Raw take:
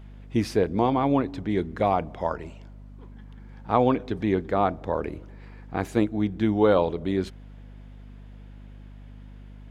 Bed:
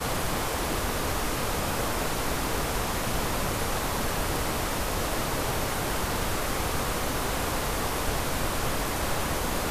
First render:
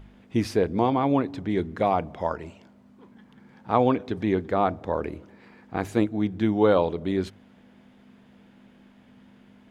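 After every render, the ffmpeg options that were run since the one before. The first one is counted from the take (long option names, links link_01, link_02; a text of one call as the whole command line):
ffmpeg -i in.wav -af "bandreject=frequency=50:width_type=h:width=4,bandreject=frequency=100:width_type=h:width=4,bandreject=frequency=150:width_type=h:width=4" out.wav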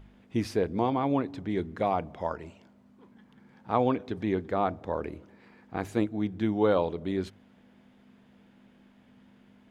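ffmpeg -i in.wav -af "volume=-4.5dB" out.wav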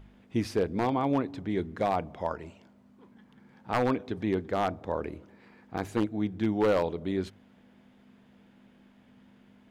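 ffmpeg -i in.wav -af "aeval=exprs='0.141*(abs(mod(val(0)/0.141+3,4)-2)-1)':channel_layout=same" out.wav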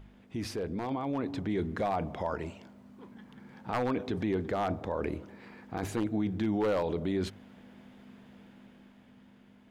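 ffmpeg -i in.wav -af "alimiter=level_in=3.5dB:limit=-24dB:level=0:latency=1:release=16,volume=-3.5dB,dynaudnorm=framelen=180:gausssize=13:maxgain=5.5dB" out.wav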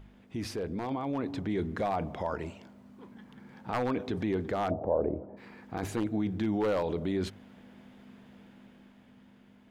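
ffmpeg -i in.wav -filter_complex "[0:a]asplit=3[link_01][link_02][link_03];[link_01]afade=type=out:start_time=4.7:duration=0.02[link_04];[link_02]lowpass=frequency=660:width_type=q:width=3,afade=type=in:start_time=4.7:duration=0.02,afade=type=out:start_time=5.36:duration=0.02[link_05];[link_03]afade=type=in:start_time=5.36:duration=0.02[link_06];[link_04][link_05][link_06]amix=inputs=3:normalize=0" out.wav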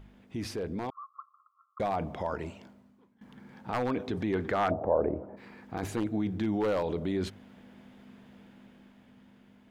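ffmpeg -i in.wav -filter_complex "[0:a]asettb=1/sr,asplit=3[link_01][link_02][link_03];[link_01]atrim=end=0.904[link_04];[link_02]atrim=start=0.9:end=1.8,asetpts=PTS-STARTPTS,afade=type=in:duration=0.004:curve=qsin,afade=type=out:start_time=0.896:duration=0.004:curve=qsin,asuperpass=centerf=1200:order=20:qfactor=3.8[link_05];[link_03]atrim=start=1.796[link_06];[link_04][link_05]acrossfade=duration=0.004:curve1=hsin:curve2=qsin[link_07];[link_07][link_06]acrossfade=duration=0.004:curve1=qsin:curve2=hsin,asettb=1/sr,asplit=3[link_08][link_09][link_10];[link_08]atrim=end=4.334[link_11];[link_09]atrim=start=4.33:end=5.36,asetpts=PTS-STARTPTS,afade=type=in:duration=0.004:curve=qsin,afade=type=out:start_time=1.026:duration=0.004:curve=qsin,equalizer=frequency=1600:width=0.73:gain=7.5[link_12];[link_10]atrim=start=5.356[link_13];[link_11][link_12]acrossfade=duration=0.004:curve1=hsin:curve2=qsin[link_14];[link_14][link_13]acrossfade=duration=0.004:curve1=qsin:curve2=hsin,asplit=2[link_15][link_16];[link_15]atrim=end=3.21,asetpts=PTS-STARTPTS,afade=type=out:start_time=2.66:duration=0.55:curve=qua:silence=0.11885[link_17];[link_16]atrim=start=3.21,asetpts=PTS-STARTPTS,afade=type=in:duration=0.004:curve=hsin:silence=0.11885[link_18];[link_17][link_18]concat=n=2:v=0:a=1" out.wav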